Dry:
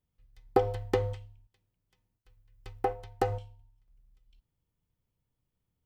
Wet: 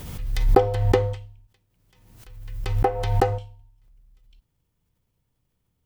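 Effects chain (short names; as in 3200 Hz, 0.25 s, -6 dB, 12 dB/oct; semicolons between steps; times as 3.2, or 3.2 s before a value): backwards sustainer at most 46 dB/s; gain +7.5 dB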